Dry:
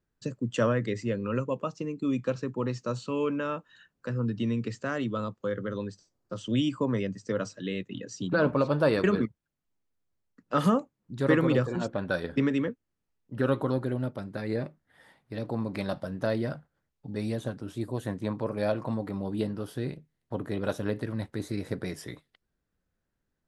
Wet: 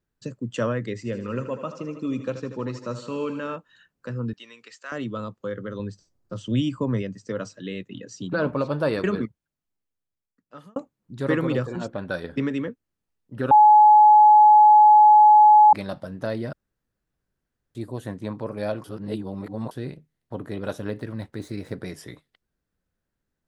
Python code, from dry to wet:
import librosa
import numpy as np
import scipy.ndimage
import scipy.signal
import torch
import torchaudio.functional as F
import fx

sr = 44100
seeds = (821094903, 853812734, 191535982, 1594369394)

y = fx.echo_thinned(x, sr, ms=79, feedback_pct=72, hz=170.0, wet_db=-11.0, at=(0.96, 3.56))
y = fx.highpass(y, sr, hz=1100.0, slope=12, at=(4.33, 4.92))
y = fx.low_shelf(y, sr, hz=150.0, db=10.0, at=(5.79, 7.02))
y = fx.median_filter(y, sr, points=3, at=(20.83, 21.76))
y = fx.edit(y, sr, fx.fade_out_span(start_s=9.24, length_s=1.52),
    fx.bleep(start_s=13.51, length_s=2.22, hz=847.0, db=-9.0),
    fx.room_tone_fill(start_s=16.53, length_s=1.22),
    fx.reverse_span(start_s=18.84, length_s=0.87), tone=tone)